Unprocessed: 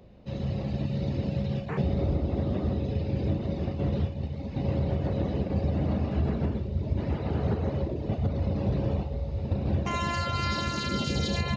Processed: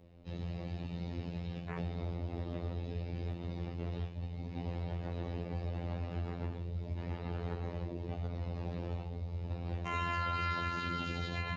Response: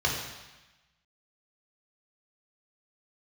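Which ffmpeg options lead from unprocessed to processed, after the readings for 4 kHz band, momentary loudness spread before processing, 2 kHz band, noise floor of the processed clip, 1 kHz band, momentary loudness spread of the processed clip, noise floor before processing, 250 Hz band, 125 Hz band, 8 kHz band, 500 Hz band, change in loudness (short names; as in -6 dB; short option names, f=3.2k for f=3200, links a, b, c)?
-10.0 dB, 3 LU, -4.0 dB, -44 dBFS, -4.5 dB, 6 LU, -36 dBFS, -12.0 dB, -10.0 dB, n/a, -11.5 dB, -9.5 dB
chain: -filter_complex "[0:a]asplit=2[a][b];[1:a]atrim=start_sample=2205[c];[b][c]afir=irnorm=-1:irlink=0,volume=-23dB[d];[a][d]amix=inputs=2:normalize=0,afftfilt=real='hypot(re,im)*cos(PI*b)':imag='0':win_size=2048:overlap=0.75,acrossover=split=510|3100[e][f][g];[e]acompressor=threshold=-33dB:ratio=4[h];[g]acompressor=threshold=-54dB:ratio=4[i];[h][f][i]amix=inputs=3:normalize=0,volume=-3dB"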